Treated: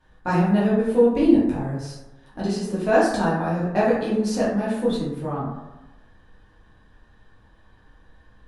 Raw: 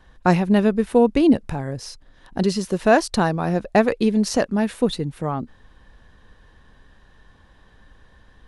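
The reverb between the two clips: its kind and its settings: plate-style reverb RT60 1 s, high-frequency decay 0.4×, DRR -9 dB; gain -12.5 dB

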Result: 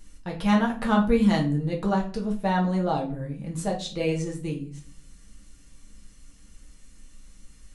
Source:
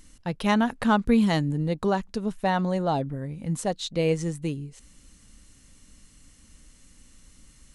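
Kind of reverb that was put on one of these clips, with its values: shoebox room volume 31 m³, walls mixed, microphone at 0.6 m; gain -4.5 dB

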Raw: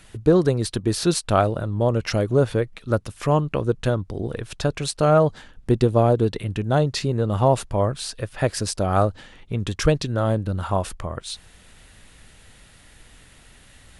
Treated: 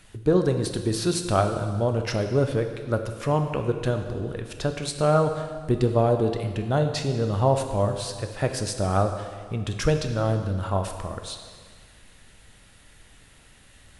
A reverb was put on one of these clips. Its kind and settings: plate-style reverb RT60 1.8 s, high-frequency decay 0.95×, DRR 5.5 dB; gain -4 dB

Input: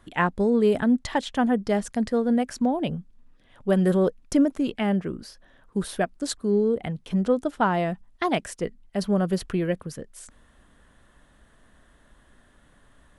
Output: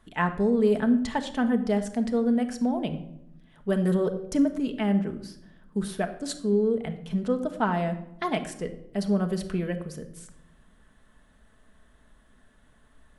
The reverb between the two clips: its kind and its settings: shoebox room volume 2300 m³, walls furnished, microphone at 1.5 m; gain -4.5 dB

